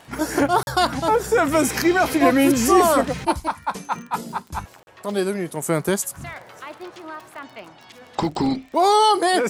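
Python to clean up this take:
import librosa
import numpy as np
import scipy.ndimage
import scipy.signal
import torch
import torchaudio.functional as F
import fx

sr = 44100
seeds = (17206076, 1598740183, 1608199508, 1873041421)

y = fx.fix_declick_ar(x, sr, threshold=6.5)
y = fx.fix_interpolate(y, sr, at_s=(0.63, 4.83), length_ms=41.0)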